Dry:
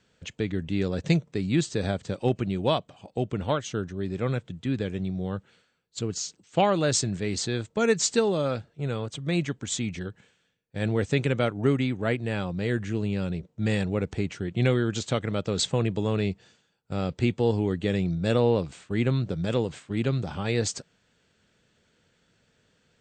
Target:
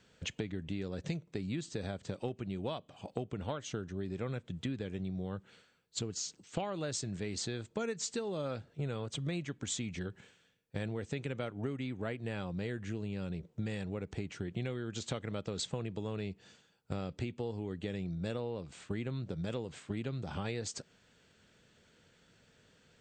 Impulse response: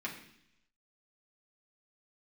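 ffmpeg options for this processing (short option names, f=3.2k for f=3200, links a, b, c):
-filter_complex "[0:a]acompressor=threshold=-35dB:ratio=12,asplit=2[a][b];[1:a]atrim=start_sample=2205,asetrate=57330,aresample=44100[c];[b][c]afir=irnorm=-1:irlink=0,volume=-24dB[d];[a][d]amix=inputs=2:normalize=0,volume=1dB"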